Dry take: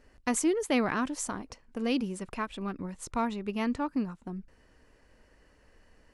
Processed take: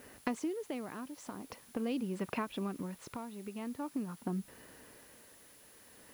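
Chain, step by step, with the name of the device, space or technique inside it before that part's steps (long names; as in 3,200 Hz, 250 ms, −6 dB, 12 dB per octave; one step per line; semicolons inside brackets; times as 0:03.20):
dynamic equaliser 1,700 Hz, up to −6 dB, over −44 dBFS, Q 0.87
medium wave at night (band-pass filter 130–3,500 Hz; downward compressor, threshold −41 dBFS, peak gain reduction 17 dB; amplitude tremolo 0.45 Hz, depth 66%; steady tone 10,000 Hz −71 dBFS; white noise bed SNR 21 dB)
level +8.5 dB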